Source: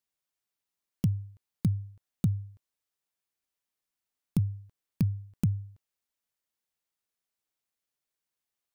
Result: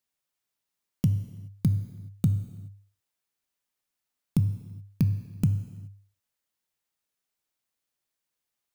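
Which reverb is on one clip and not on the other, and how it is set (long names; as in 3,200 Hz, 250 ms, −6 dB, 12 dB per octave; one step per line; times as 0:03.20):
reverb whose tail is shaped and stops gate 450 ms falling, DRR 8.5 dB
level +2.5 dB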